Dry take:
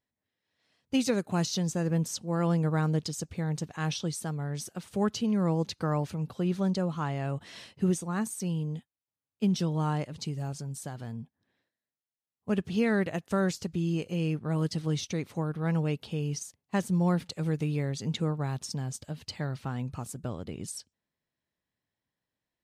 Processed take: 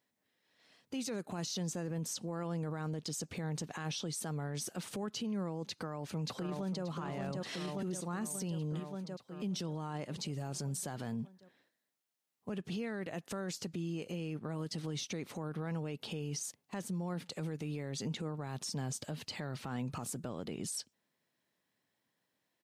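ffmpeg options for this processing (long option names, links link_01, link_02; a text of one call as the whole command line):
ffmpeg -i in.wav -filter_complex "[0:a]asplit=2[link_01][link_02];[link_02]afade=type=in:start_time=5.68:duration=0.01,afade=type=out:start_time=6.84:duration=0.01,aecho=0:1:580|1160|1740|2320|2900|3480|4060|4640:0.473151|0.283891|0.170334|0.102201|0.0613204|0.0367922|0.0220753|0.0132452[link_03];[link_01][link_03]amix=inputs=2:normalize=0,highpass=170,acompressor=threshold=-38dB:ratio=6,alimiter=level_in=13.5dB:limit=-24dB:level=0:latency=1:release=12,volume=-13.5dB,volume=6.5dB" out.wav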